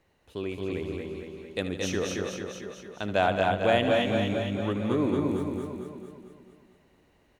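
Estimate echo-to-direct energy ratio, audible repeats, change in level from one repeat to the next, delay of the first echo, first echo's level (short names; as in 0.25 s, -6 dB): 1.0 dB, 15, no steady repeat, 76 ms, -12.0 dB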